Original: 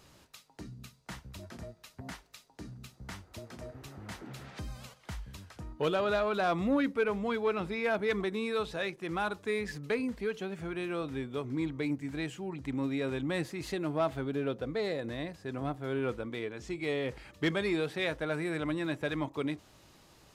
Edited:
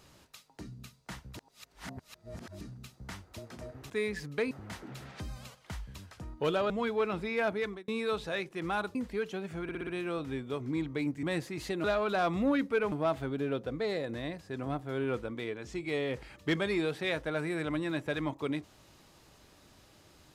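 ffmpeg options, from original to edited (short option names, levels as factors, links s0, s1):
-filter_complex "[0:a]asplit=15[s0][s1][s2][s3][s4][s5][s6][s7][s8][s9][s10][s11][s12][s13][s14];[s0]atrim=end=1.372[s15];[s1]atrim=start=1.368:end=2.612,asetpts=PTS-STARTPTS,areverse[s16];[s2]atrim=start=2.608:end=3.902[s17];[s3]atrim=start=9.418:end=10.032[s18];[s4]atrim=start=3.898:end=6.092[s19];[s5]atrim=start=7.168:end=8.35,asetpts=PTS-STARTPTS,afade=t=out:st=0.802:d=0.38[s20];[s6]atrim=start=8.35:end=9.422,asetpts=PTS-STARTPTS,afade=t=in:d=0.004:c=hsin[s21];[s7]atrim=start=10.028:end=10.772[s22];[s8]atrim=start=10.708:end=10.772[s23];[s9]atrim=start=10.708:end=10.772[s24];[s10]atrim=start=10.708:end=10.772[s25];[s11]atrim=start=10.708:end=12.072[s26];[s12]atrim=start=13.258:end=13.872[s27];[s13]atrim=start=6.088:end=7.172[s28];[s14]atrim=start=13.868[s29];[s15][s16]acrossfade=d=0.004:c1=hsin:c2=hsin[s30];[s30][s17]acrossfade=d=0.004:c1=hsin:c2=hsin[s31];[s31][s18]acrossfade=d=0.004:c1=hsin:c2=hsin[s32];[s32][s19]acrossfade=d=0.004:c1=hsin:c2=hsin[s33];[s20][s21]concat=n=2:v=0:a=1[s34];[s33][s34]acrossfade=d=0.004:c1=hsin:c2=hsin[s35];[s35][s22]acrossfade=d=0.004:c1=hsin:c2=hsin[s36];[s36][s23]acrossfade=d=0.004:c1=hsin:c2=hsin[s37];[s37][s24]acrossfade=d=0.004:c1=hsin:c2=hsin[s38];[s38][s25]acrossfade=d=0.004:c1=hsin:c2=hsin[s39];[s39][s26]acrossfade=d=0.004:c1=hsin:c2=hsin[s40];[s40][s27]acrossfade=d=0.004:c1=hsin:c2=hsin[s41];[s41][s28]acrossfade=d=0.004:c1=hsin:c2=hsin[s42];[s42][s29]acrossfade=d=0.004:c1=hsin:c2=hsin"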